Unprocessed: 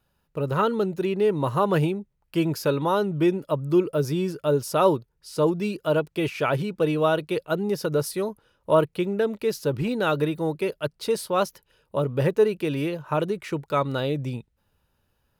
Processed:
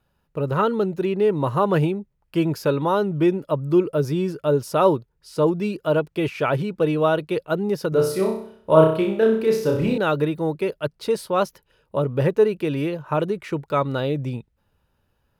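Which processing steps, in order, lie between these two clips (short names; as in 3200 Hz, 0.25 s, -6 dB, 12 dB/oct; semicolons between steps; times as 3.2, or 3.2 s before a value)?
high shelf 3500 Hz -6.5 dB; 7.89–9.98 flutter echo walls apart 5.4 m, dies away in 0.56 s; gain +2.5 dB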